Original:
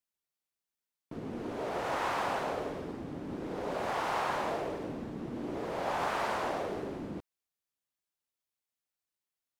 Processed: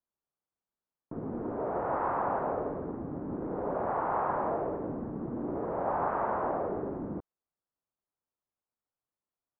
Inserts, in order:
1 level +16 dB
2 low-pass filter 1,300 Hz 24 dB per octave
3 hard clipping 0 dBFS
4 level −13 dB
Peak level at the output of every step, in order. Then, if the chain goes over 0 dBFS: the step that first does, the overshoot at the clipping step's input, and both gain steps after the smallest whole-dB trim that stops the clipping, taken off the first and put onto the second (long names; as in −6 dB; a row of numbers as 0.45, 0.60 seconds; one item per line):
−3.0, −4.5, −4.5, −17.5 dBFS
no step passes full scale